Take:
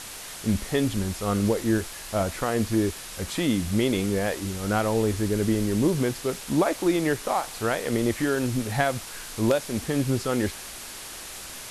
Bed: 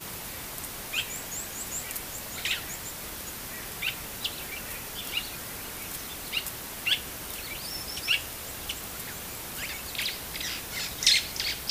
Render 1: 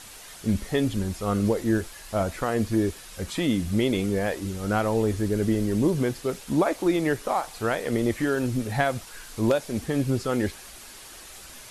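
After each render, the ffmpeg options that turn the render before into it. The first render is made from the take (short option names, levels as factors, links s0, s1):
-af "afftdn=nr=7:nf=-39"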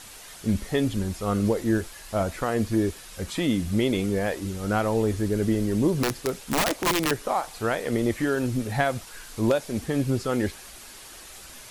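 -filter_complex "[0:a]asettb=1/sr,asplit=3[s0][s1][s2];[s0]atrim=end=6.034[s3];[s1]atrim=start=6.03:end=7.11,asetpts=PTS-STARTPTS,afade=t=in:d=0.004:c=qsin,afade=t=out:st=1.076:d=0.004:c=qsin,aeval=exprs='(mod(7.5*val(0)+1,2)-1)/7.5':c=same[s4];[s2]atrim=start=7.106[s5];[s3][s4]acrossfade=d=0.004:c1=hsin:c2=qsin[s6];[s6][s5]acrossfade=d=0.004:c1=qsin:c2=hsin"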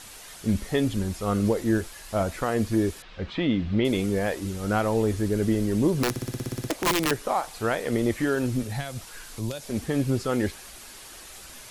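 -filter_complex "[0:a]asettb=1/sr,asplit=3[s0][s1][s2];[s0]atrim=end=3.024[s3];[s1]atrim=start=3.02:end=3.85,asetpts=PTS-STARTPTS,afade=t=in:d=0.004:c=qsin,afade=t=out:st=0.826:d=0.004:c=qsin,lowpass=f=3800:w=0.5412,lowpass=f=3800:w=1.3066[s4];[s2]atrim=start=3.846[s5];[s3][s4]acrossfade=d=0.004:c1=hsin:c2=qsin[s6];[s6][s5]acrossfade=d=0.004:c1=qsin:c2=hsin,asettb=1/sr,asplit=3[s7][s8][s9];[s7]atrim=end=8.634[s10];[s8]atrim=start=8.63:end=9.7,asetpts=PTS-STARTPTS,afade=t=in:d=0.004:c=qsin,afade=t=out:st=1.066:d=0.004:c=qsin,acrossover=split=150|3000[s11][s12][s13];[s12]acompressor=threshold=0.0141:ratio=3:attack=3.2:release=140:knee=2.83:detection=peak[s14];[s11][s14][s13]amix=inputs=3:normalize=0[s15];[s9]atrim=start=9.696[s16];[s10][s15]acrossfade=d=0.004:c1=hsin:c2=qsin[s17];[s17][s16]acrossfade=d=0.004:c1=qsin:c2=hsin,asplit=11[s18][s19][s20][s21][s22][s23][s24][s25][s26][s27][s28];[s18]atrim=end=6.162[s29];[s19]atrim=start=6.098:end=6.162[s30];[s20]atrim=start=6.098:end=6.162[s31];[s21]atrim=start=6.098:end=6.162[s32];[s22]atrim=start=6.098:end=6.162[s33];[s23]atrim=start=6.098:end=6.162[s34];[s24]atrim=start=6.098:end=6.162[s35];[s25]atrim=start=6.098:end=6.162[s36];[s26]atrim=start=6.098:end=6.162[s37];[s27]atrim=start=6.098:end=6.162[s38];[s28]atrim=start=6.698[s39];[s29][s30]acrossfade=d=0.004:c1=hsin:c2=hsin[s40];[s40][s31]acrossfade=d=0.004:c1=hsin:c2=hsin[s41];[s41][s32]acrossfade=d=0.004:c1=hsin:c2=hsin[s42];[s42][s33]acrossfade=d=0.004:c1=hsin:c2=hsin[s43];[s43][s34]acrossfade=d=0.004:c1=hsin:c2=hsin[s44];[s44][s35]acrossfade=d=0.004:c1=hsin:c2=hsin[s45];[s45][s36]acrossfade=d=0.004:c1=hsin:c2=hsin[s46];[s46][s37]acrossfade=d=0.004:c1=hsin:c2=hsin[s47];[s47][s38]acrossfade=d=0.004:c1=hsin:c2=hsin[s48];[s48][s39]acrossfade=d=0.004:c1=hsin:c2=hsin"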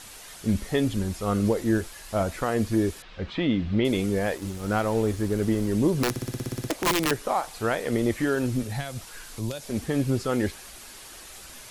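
-filter_complex "[0:a]asettb=1/sr,asplit=3[s0][s1][s2];[s0]atrim=end=4.374[s3];[s1]atrim=start=4.37:end=5.69,asetpts=PTS-STARTPTS,afade=t=in:d=0.004:c=qsin,afade=t=out:st=1.316:d=0.004:c=qsin,aeval=exprs='sgn(val(0))*max(abs(val(0))-0.0075,0)':c=same[s4];[s2]atrim=start=5.686[s5];[s3][s4]acrossfade=d=0.004:c1=hsin:c2=qsin[s6];[s6][s5]acrossfade=d=0.004:c1=qsin:c2=hsin"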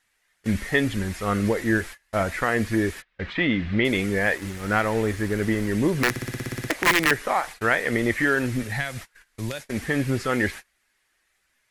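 -af "agate=range=0.0316:threshold=0.0141:ratio=16:detection=peak,equalizer=f=1900:w=1.6:g=13.5"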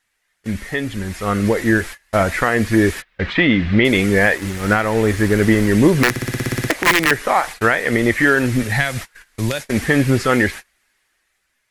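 -af "alimiter=limit=0.237:level=0:latency=1:release=431,dynaudnorm=f=260:g=11:m=3.76"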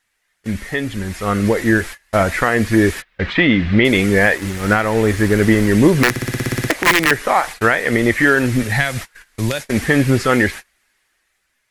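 -af "volume=1.12"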